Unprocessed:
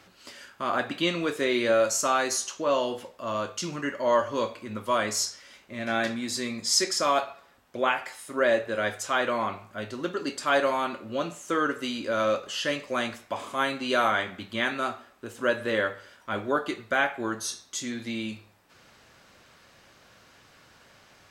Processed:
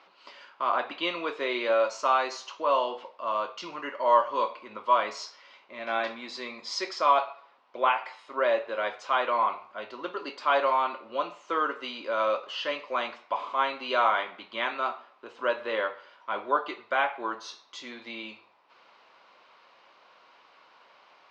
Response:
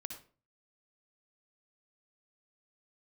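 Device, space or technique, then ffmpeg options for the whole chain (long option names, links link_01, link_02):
phone earpiece: -af "highpass=500,equalizer=frequency=1000:width_type=q:width=4:gain=8,equalizer=frequency=1700:width_type=q:width=4:gain=-7,equalizer=frequency=3500:width_type=q:width=4:gain=-3,lowpass=frequency=4100:width=0.5412,lowpass=frequency=4100:width=1.3066"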